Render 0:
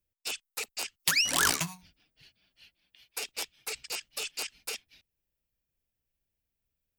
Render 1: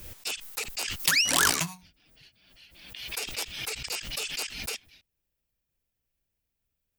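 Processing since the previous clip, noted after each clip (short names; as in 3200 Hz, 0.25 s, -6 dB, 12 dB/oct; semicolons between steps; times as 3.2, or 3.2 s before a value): backwards sustainer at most 53 dB/s; gain +2 dB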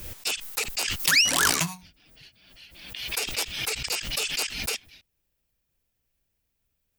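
maximiser +14 dB; gain -9 dB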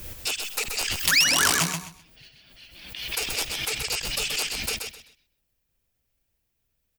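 feedback echo 0.129 s, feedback 22%, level -5.5 dB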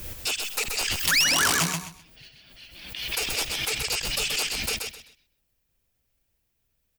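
soft clip -16.5 dBFS, distortion -14 dB; gain +1.5 dB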